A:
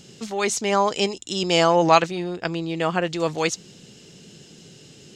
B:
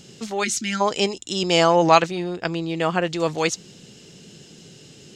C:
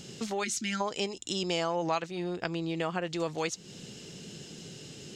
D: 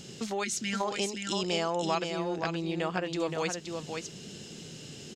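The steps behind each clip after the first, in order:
time-frequency box 0.44–0.81 s, 370–1300 Hz -25 dB; trim +1 dB
compression 3:1, threshold -32 dBFS, peak gain reduction 17 dB
delay 522 ms -5.5 dB

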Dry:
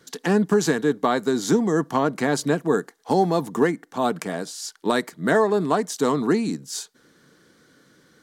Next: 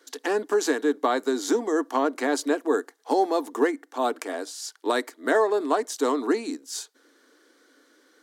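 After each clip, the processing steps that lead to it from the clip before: elliptic high-pass 270 Hz, stop band 40 dB; trim -1.5 dB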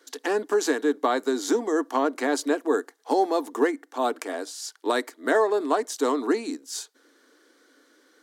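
no audible change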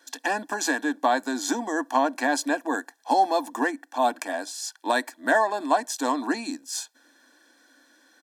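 comb 1.2 ms, depth 86%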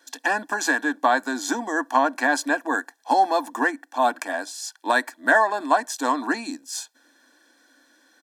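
dynamic bell 1.4 kHz, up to +7 dB, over -38 dBFS, Q 1.3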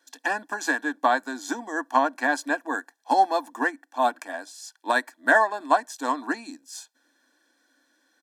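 upward expansion 1.5:1, over -30 dBFS

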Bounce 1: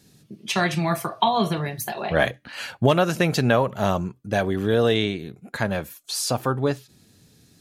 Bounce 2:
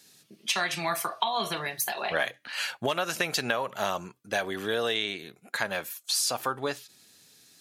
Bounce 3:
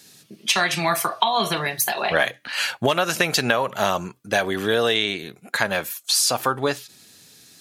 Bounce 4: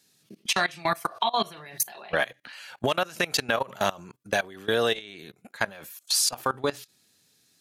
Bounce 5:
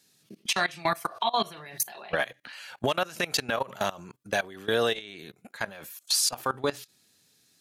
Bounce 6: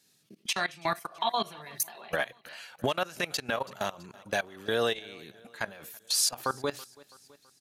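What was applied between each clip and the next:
high-pass 1.4 kHz 6 dB/octave; compression, threshold -27 dBFS, peak gain reduction 8 dB; trim +3.5 dB
bass shelf 220 Hz +4.5 dB; trim +7.5 dB
level held to a coarse grid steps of 21 dB; trim -2 dB
peak limiter -14 dBFS, peak gain reduction 7 dB
feedback delay 329 ms, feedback 59%, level -23 dB; random flutter of the level, depth 60%

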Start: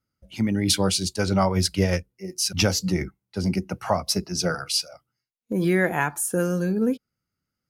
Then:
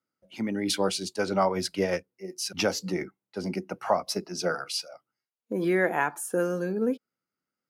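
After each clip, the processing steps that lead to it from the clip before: high-pass 300 Hz 12 dB/octave; treble shelf 2.7 kHz -9.5 dB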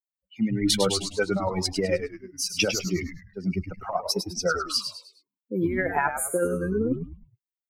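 expander on every frequency bin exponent 2; compressor with a negative ratio -29 dBFS, ratio -0.5; on a send: frequency-shifting echo 103 ms, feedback 36%, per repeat -96 Hz, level -8 dB; on the sum: trim +7 dB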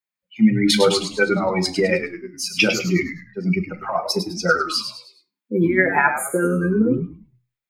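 reverberation RT60 0.30 s, pre-delay 3 ms, DRR 7 dB; trim +1.5 dB

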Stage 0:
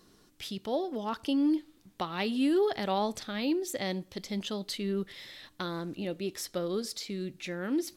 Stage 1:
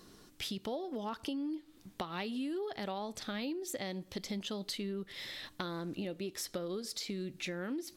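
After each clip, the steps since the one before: compression 10:1, threshold -39 dBFS, peak gain reduction 16 dB; trim +3.5 dB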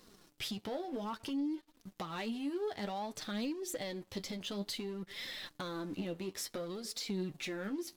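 waveshaping leveller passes 3; flange 0.57 Hz, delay 3.7 ms, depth 8.4 ms, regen +31%; trim -7 dB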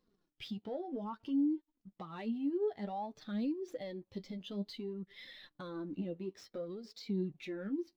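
median filter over 5 samples; spectral contrast expander 1.5:1; trim +4.5 dB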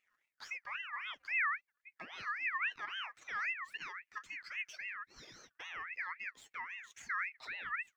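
ring modulator with a swept carrier 1.9 kHz, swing 25%, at 3.7 Hz

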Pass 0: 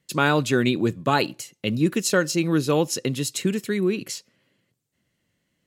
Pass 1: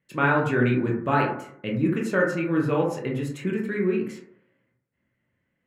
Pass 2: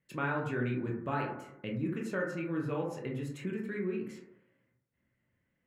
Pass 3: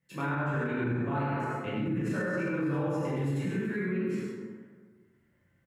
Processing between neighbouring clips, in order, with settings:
resonant high shelf 3.1 kHz -12.5 dB, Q 1.5; reverberation RT60 0.65 s, pre-delay 13 ms, DRR -1.5 dB; trim -6 dB
bass shelf 78 Hz +6.5 dB; compression 1.5:1, threshold -39 dBFS, peak gain reduction 8.5 dB; trim -4.5 dB
delay 99 ms -4 dB; plate-style reverb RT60 1.5 s, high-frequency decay 0.45×, DRR -8 dB; peak limiter -20.5 dBFS, peak gain reduction 10.5 dB; trim -2.5 dB

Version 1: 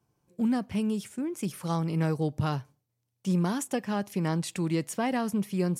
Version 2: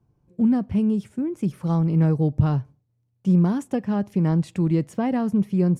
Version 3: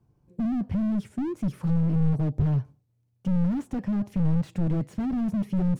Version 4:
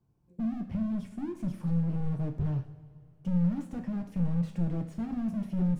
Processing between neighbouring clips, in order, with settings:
tilt EQ -3.5 dB/octave
slew-rate limiter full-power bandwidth 14 Hz
two-slope reverb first 0.47 s, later 2.9 s, from -18 dB, DRR 3.5 dB; trim -7.5 dB

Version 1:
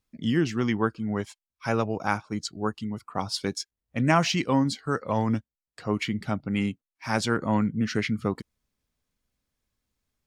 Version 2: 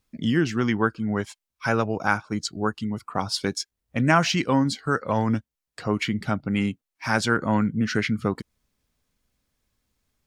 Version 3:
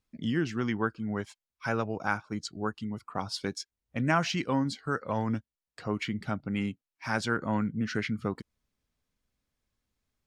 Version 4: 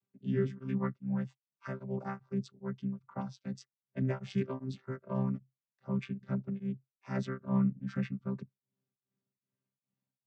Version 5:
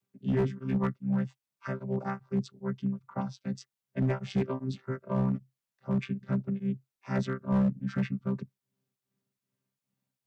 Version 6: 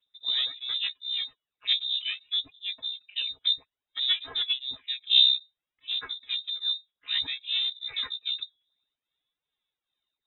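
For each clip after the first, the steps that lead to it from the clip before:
dynamic bell 1.5 kHz, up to +6 dB, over -46 dBFS, Q 4.1; in parallel at 0 dB: compression, threshold -33 dBFS, peak gain reduction 17.5 dB
treble shelf 8.6 kHz -6.5 dB; trim -7 dB
vocoder on a held chord bare fifth, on C3; tremolo of two beating tones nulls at 2.5 Hz
hard clipper -26.5 dBFS, distortion -16 dB; trim +5 dB
de-hum 430 Hz, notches 2; phaser 0.58 Hz, delay 3.3 ms, feedback 67%; frequency inversion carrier 3.8 kHz

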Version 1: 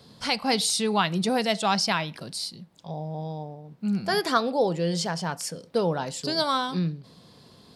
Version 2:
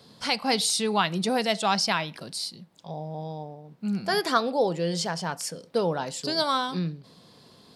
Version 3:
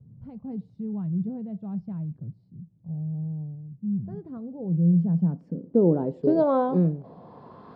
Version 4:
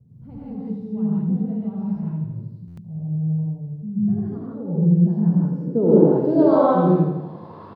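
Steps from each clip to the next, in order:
bass shelf 110 Hz -9 dB
low-pass sweep 120 Hz -> 1.2 kHz, 4.50–7.73 s; trim +6.5 dB
on a send: feedback delay 82 ms, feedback 57%, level -6.5 dB; on the sum: gated-style reverb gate 190 ms rising, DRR -7 dB; buffer glitch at 2.67 s, samples 512, times 8; trim -1.5 dB

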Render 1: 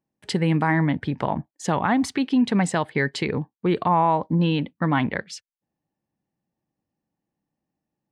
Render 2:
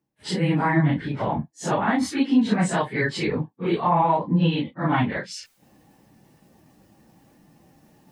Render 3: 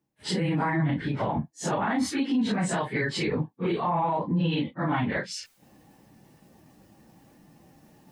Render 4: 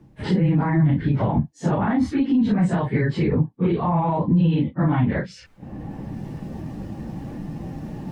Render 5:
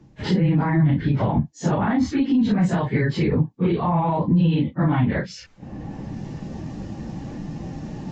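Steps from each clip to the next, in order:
phase randomisation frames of 100 ms; reverse; upward compressor, threshold -33 dBFS; reverse
peak limiter -18.5 dBFS, peak gain reduction 9.5 dB
RIAA curve playback; three bands compressed up and down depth 70%
treble shelf 4.5 kHz +10.5 dB; resampled via 16 kHz

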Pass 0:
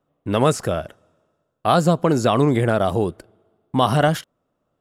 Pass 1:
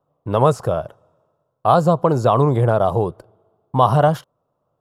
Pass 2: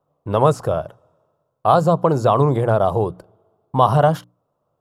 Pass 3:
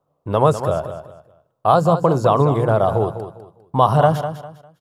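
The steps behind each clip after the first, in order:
graphic EQ 125/250/500/1000/2000/8000 Hz +10/-4/+6/+11/-8/-4 dB; trim -4.5 dB
hum notches 60/120/180/240/300 Hz
feedback delay 201 ms, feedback 28%, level -10.5 dB

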